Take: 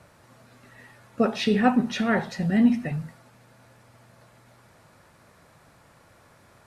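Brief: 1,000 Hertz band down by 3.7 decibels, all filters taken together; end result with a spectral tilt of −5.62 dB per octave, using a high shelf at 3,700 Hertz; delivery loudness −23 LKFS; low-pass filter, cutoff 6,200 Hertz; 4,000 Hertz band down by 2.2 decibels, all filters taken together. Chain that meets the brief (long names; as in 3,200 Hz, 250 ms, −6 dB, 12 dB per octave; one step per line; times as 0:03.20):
low-pass filter 6,200 Hz
parametric band 1,000 Hz −6 dB
high-shelf EQ 3,700 Hz +4.5 dB
parametric band 4,000 Hz −4.5 dB
level +1.5 dB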